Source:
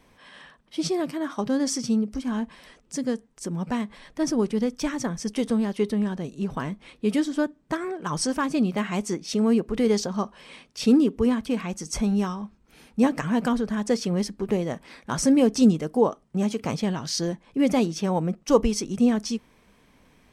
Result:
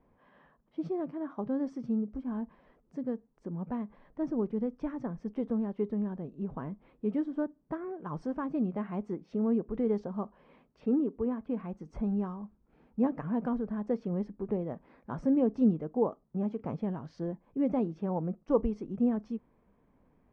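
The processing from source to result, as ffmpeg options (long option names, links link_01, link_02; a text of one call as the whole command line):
ffmpeg -i in.wav -filter_complex "[0:a]asettb=1/sr,asplit=3[link_01][link_02][link_03];[link_01]atrim=end=10.804[link_04];[link_02]atrim=start=10.8:end=11.49,asetpts=PTS-STARTPTS,afade=type=in:duration=0.004:curve=qsin,afade=type=out:start_time=0.686:duration=0.004:curve=qsin,bass=frequency=250:gain=-6,treble=frequency=4000:gain=-12[link_05];[link_03]atrim=start=11.486[link_06];[link_04][link_05]acrossfade=duration=0.004:curve1=hsin:curve2=qsin[link_07];[link_07][link_06]acrossfade=duration=0.004:curve1=qsin:curve2=hsin,lowpass=1000,volume=-7.5dB" out.wav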